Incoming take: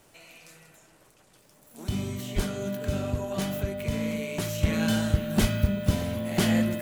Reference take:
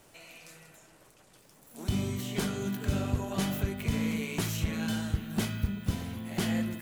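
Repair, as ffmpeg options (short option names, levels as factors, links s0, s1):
-filter_complex "[0:a]adeclick=t=4,bandreject=f=600:w=30,asplit=3[s0][s1][s2];[s0]afade=t=out:st=2.35:d=0.02[s3];[s1]highpass=f=140:w=0.5412,highpass=f=140:w=1.3066,afade=t=in:st=2.35:d=0.02,afade=t=out:st=2.47:d=0.02[s4];[s2]afade=t=in:st=2.47:d=0.02[s5];[s3][s4][s5]amix=inputs=3:normalize=0,asplit=3[s6][s7][s8];[s6]afade=t=out:st=5.4:d=0.02[s9];[s7]highpass=f=140:w=0.5412,highpass=f=140:w=1.3066,afade=t=in:st=5.4:d=0.02,afade=t=out:st=5.52:d=0.02[s10];[s8]afade=t=in:st=5.52:d=0.02[s11];[s9][s10][s11]amix=inputs=3:normalize=0,asetnsamples=n=441:p=0,asendcmd='4.63 volume volume -6.5dB',volume=1"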